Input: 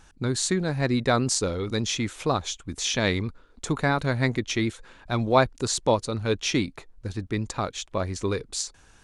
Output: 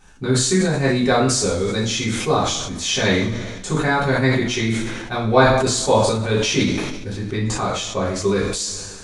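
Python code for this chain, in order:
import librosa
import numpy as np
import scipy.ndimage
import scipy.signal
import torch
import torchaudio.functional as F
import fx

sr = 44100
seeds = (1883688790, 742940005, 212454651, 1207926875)

y = fx.rev_double_slope(x, sr, seeds[0], early_s=0.46, late_s=2.0, knee_db=-19, drr_db=-8.0)
y = fx.sustainer(y, sr, db_per_s=37.0)
y = y * 10.0 ** (-3.0 / 20.0)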